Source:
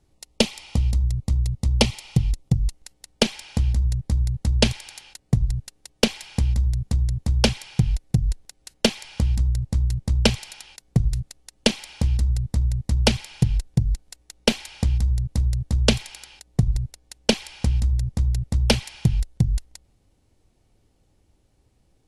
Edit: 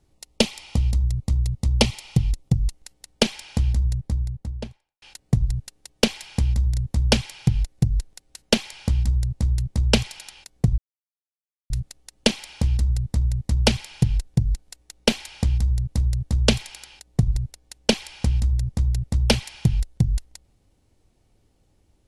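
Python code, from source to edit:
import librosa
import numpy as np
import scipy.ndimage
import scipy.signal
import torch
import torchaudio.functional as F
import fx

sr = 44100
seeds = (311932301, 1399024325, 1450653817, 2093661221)

y = fx.studio_fade_out(x, sr, start_s=3.7, length_s=1.32)
y = fx.edit(y, sr, fx.cut(start_s=6.74, length_s=0.32),
    fx.insert_silence(at_s=11.1, length_s=0.92), tone=tone)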